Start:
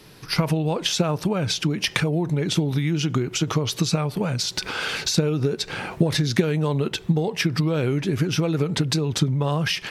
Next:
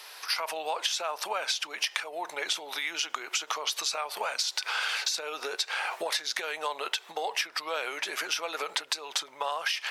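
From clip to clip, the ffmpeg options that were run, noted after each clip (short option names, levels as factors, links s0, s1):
-af "highpass=f=700:w=0.5412,highpass=f=700:w=1.3066,acompressor=threshold=0.0224:ratio=6,volume=1.88"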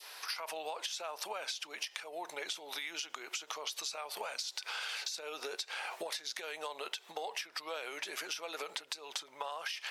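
-af "adynamicequalizer=threshold=0.00562:dfrequency=1300:dqfactor=0.7:tfrequency=1300:tqfactor=0.7:attack=5:release=100:ratio=0.375:range=2.5:mode=cutabove:tftype=bell,acompressor=threshold=0.0224:ratio=6,volume=0.708"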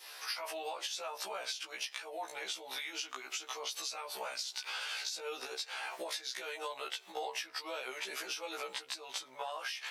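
-af "afftfilt=real='re*1.73*eq(mod(b,3),0)':imag='im*1.73*eq(mod(b,3),0)':win_size=2048:overlap=0.75,volume=1.33"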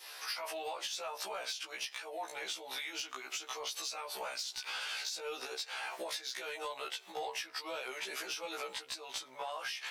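-af "asoftclip=type=tanh:threshold=0.0299,volume=1.12"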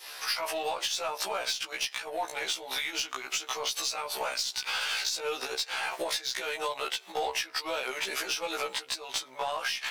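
-af "aeval=exprs='0.0335*(cos(1*acos(clip(val(0)/0.0335,-1,1)))-cos(1*PI/2))+0.000596*(cos(4*acos(clip(val(0)/0.0335,-1,1)))-cos(4*PI/2))+0.00188*(cos(7*acos(clip(val(0)/0.0335,-1,1)))-cos(7*PI/2))':c=same,volume=2.66"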